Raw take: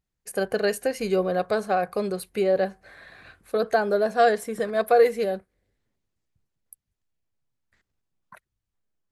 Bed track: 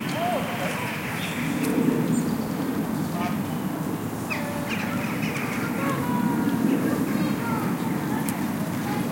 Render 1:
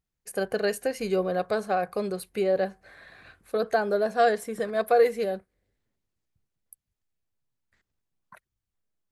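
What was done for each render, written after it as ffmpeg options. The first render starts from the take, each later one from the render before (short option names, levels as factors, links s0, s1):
-af "volume=0.75"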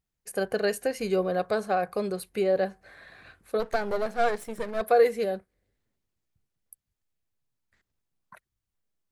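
-filter_complex "[0:a]asplit=3[s0][s1][s2];[s0]afade=t=out:st=3.59:d=0.02[s3];[s1]aeval=exprs='if(lt(val(0),0),0.251*val(0),val(0))':c=same,afade=t=in:st=3.59:d=0.02,afade=t=out:st=4.8:d=0.02[s4];[s2]afade=t=in:st=4.8:d=0.02[s5];[s3][s4][s5]amix=inputs=3:normalize=0"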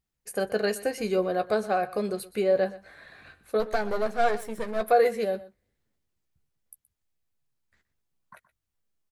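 -filter_complex "[0:a]asplit=2[s0][s1];[s1]adelay=14,volume=0.335[s2];[s0][s2]amix=inputs=2:normalize=0,aecho=1:1:123:0.126"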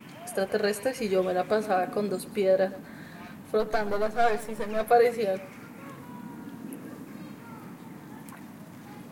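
-filter_complex "[1:a]volume=0.126[s0];[0:a][s0]amix=inputs=2:normalize=0"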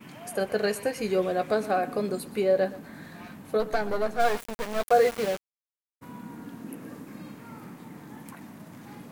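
-filter_complex "[0:a]asplit=3[s0][s1][s2];[s0]afade=t=out:st=4.19:d=0.02[s3];[s1]aeval=exprs='val(0)*gte(abs(val(0)),0.0316)':c=same,afade=t=in:st=4.19:d=0.02,afade=t=out:st=6.01:d=0.02[s4];[s2]afade=t=in:st=6.01:d=0.02[s5];[s3][s4][s5]amix=inputs=3:normalize=0"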